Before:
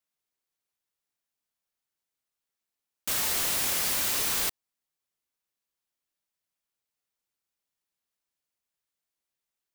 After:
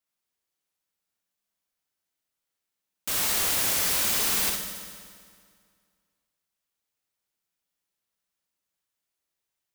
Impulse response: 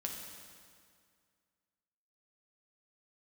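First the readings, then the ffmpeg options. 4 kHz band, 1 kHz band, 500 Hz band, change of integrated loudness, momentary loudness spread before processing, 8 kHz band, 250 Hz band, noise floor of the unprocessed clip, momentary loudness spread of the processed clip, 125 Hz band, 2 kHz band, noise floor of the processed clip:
+2.5 dB, +2.5 dB, +3.0 dB, +2.0 dB, 5 LU, +2.5 dB, +4.0 dB, below −85 dBFS, 15 LU, +3.0 dB, +2.5 dB, −85 dBFS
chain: -filter_complex "[0:a]asplit=2[link_01][link_02];[1:a]atrim=start_sample=2205,adelay=60[link_03];[link_02][link_03]afir=irnorm=-1:irlink=0,volume=-1dB[link_04];[link_01][link_04]amix=inputs=2:normalize=0"

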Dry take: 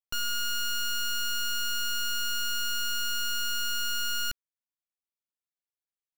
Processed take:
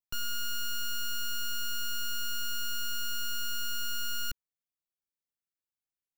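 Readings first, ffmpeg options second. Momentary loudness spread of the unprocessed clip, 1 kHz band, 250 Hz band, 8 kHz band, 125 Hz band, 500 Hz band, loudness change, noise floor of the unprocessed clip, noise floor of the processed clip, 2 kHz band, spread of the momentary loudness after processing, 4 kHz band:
1 LU, −6.0 dB, −1.0 dB, −5.0 dB, can't be measured, −5.0 dB, −5.0 dB, below −85 dBFS, below −85 dBFS, −6.0 dB, 1 LU, −5.5 dB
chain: -filter_complex "[0:a]highshelf=frequency=11000:gain=5.5,acrossover=split=300[link_01][link_02];[link_01]acontrast=57[link_03];[link_03][link_02]amix=inputs=2:normalize=0,volume=-6dB"

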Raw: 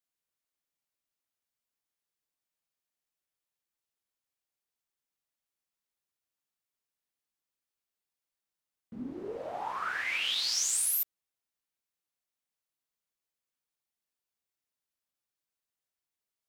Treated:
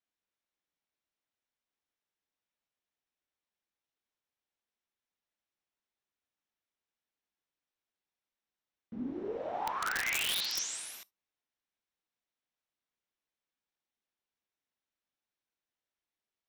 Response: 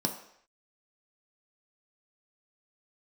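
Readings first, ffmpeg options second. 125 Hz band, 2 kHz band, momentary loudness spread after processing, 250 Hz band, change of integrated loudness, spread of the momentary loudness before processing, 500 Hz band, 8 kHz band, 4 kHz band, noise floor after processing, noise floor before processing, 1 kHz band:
+0.5 dB, −0.5 dB, 14 LU, +2.0 dB, −3.5 dB, 14 LU, +1.0 dB, −7.5 dB, −3.0 dB, below −85 dBFS, below −85 dBFS, +0.5 dB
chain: -filter_complex "[0:a]lowpass=4200,asplit=2[link_01][link_02];[1:a]atrim=start_sample=2205,atrim=end_sample=3528,highshelf=frequency=3500:gain=11[link_03];[link_02][link_03]afir=irnorm=-1:irlink=0,volume=-24dB[link_04];[link_01][link_04]amix=inputs=2:normalize=0,aeval=exprs='(mod(18.8*val(0)+1,2)-1)/18.8':channel_layout=same"

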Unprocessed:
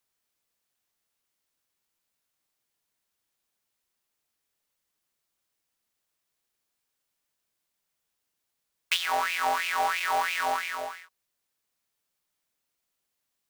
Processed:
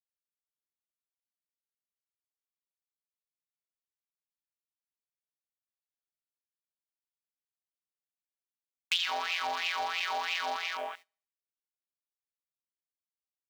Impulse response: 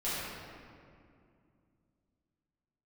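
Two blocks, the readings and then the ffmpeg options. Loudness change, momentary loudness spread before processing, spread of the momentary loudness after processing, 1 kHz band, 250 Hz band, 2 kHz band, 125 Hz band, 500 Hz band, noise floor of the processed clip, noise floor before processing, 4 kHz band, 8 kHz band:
−4.5 dB, 9 LU, 8 LU, −7.0 dB, −6.0 dB, −4.5 dB, can't be measured, −6.0 dB, below −85 dBFS, −82 dBFS, 0.0 dB, −7.5 dB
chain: -filter_complex "[0:a]equalizer=frequency=7900:width_type=o:width=2.5:gain=-4,asplit=2[link_01][link_02];[link_02]aecho=0:1:73|146|219|292|365:0.188|0.0961|0.049|0.025|0.0127[link_03];[link_01][link_03]amix=inputs=2:normalize=0,afwtdn=0.00708,agate=range=-16dB:threshold=-48dB:ratio=16:detection=peak,acompressor=threshold=-31dB:ratio=2.5,asoftclip=type=tanh:threshold=-21.5dB,highshelf=frequency=2400:width_type=q:width=1.5:gain=7"

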